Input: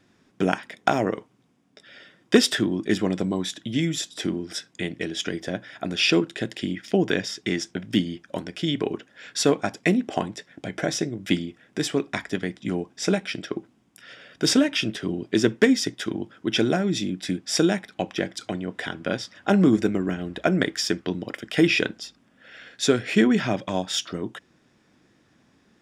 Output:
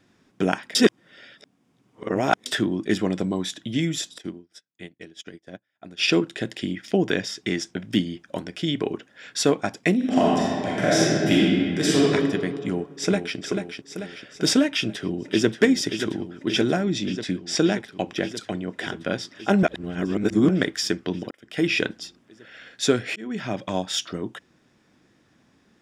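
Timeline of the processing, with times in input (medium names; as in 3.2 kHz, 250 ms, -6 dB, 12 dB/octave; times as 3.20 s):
0.75–2.46 s: reverse
4.18–6.08 s: upward expansion 2.5:1, over -43 dBFS
9.96–12.00 s: reverb throw, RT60 2.1 s, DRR -7 dB
12.59–13.37 s: echo throw 440 ms, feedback 55%, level -6.5 dB
14.67–15.49 s: echo throw 580 ms, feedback 80%, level -8.5 dB
16.84–17.80 s: low-pass 6.8 kHz
19.63–20.49 s: reverse
21.31–21.82 s: fade in
23.16–23.69 s: fade in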